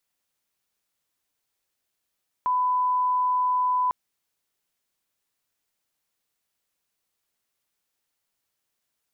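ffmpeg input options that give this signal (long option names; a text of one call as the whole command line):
ffmpeg -f lavfi -i "sine=frequency=1000:duration=1.45:sample_rate=44100,volume=-1.94dB" out.wav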